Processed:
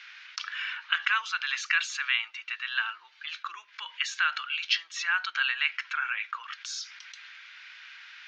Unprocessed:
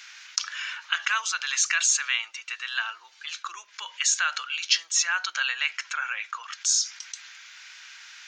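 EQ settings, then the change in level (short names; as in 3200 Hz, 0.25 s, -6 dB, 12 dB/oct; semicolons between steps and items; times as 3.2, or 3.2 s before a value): HPF 330 Hz 12 dB/oct; air absorption 340 m; bell 550 Hz -14 dB 1.8 oct; +6.0 dB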